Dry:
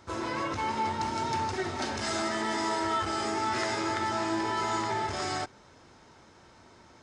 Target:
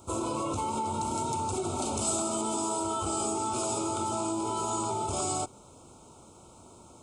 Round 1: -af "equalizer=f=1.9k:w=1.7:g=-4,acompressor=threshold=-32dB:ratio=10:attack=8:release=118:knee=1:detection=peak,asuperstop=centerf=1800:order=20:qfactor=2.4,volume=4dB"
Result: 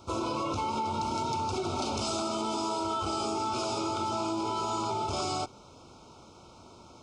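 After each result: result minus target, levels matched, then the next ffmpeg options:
8000 Hz band -8.0 dB; 2000 Hz band +5.5 dB
-af "equalizer=f=1.9k:w=1.7:g=-4,acompressor=threshold=-32dB:ratio=10:attack=8:release=118:knee=1:detection=peak,asuperstop=centerf=1800:order=20:qfactor=2.4,highshelf=f=6.6k:t=q:w=3:g=8,volume=4dB"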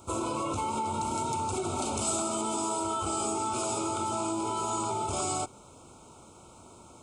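2000 Hz band +4.0 dB
-af "equalizer=f=1.9k:w=1.7:g=-12.5,acompressor=threshold=-32dB:ratio=10:attack=8:release=118:knee=1:detection=peak,asuperstop=centerf=1800:order=20:qfactor=2.4,highshelf=f=6.6k:t=q:w=3:g=8,volume=4dB"

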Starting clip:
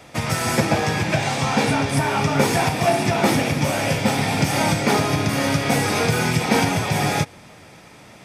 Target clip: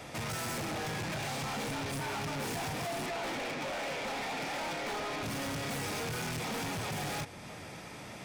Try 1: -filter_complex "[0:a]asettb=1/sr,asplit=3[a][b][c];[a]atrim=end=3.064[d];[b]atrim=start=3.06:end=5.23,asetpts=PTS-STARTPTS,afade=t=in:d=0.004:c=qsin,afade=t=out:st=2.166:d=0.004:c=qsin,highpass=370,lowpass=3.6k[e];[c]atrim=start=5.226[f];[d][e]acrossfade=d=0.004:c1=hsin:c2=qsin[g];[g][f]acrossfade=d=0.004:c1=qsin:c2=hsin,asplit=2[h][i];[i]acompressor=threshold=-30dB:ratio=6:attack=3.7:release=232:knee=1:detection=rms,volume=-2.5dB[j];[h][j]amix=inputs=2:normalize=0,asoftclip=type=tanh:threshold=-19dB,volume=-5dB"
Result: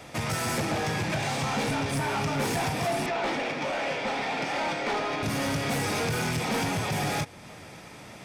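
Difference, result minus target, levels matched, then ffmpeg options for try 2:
soft clip: distortion -6 dB
-filter_complex "[0:a]asettb=1/sr,asplit=3[a][b][c];[a]atrim=end=3.064[d];[b]atrim=start=3.06:end=5.23,asetpts=PTS-STARTPTS,afade=t=in:d=0.004:c=qsin,afade=t=out:st=2.166:d=0.004:c=qsin,highpass=370,lowpass=3.6k[e];[c]atrim=start=5.226[f];[d][e]acrossfade=d=0.004:c1=hsin:c2=qsin[g];[g][f]acrossfade=d=0.004:c1=qsin:c2=hsin,asplit=2[h][i];[i]acompressor=threshold=-30dB:ratio=6:attack=3.7:release=232:knee=1:detection=rms,volume=-2.5dB[j];[h][j]amix=inputs=2:normalize=0,asoftclip=type=tanh:threshold=-30dB,volume=-5dB"

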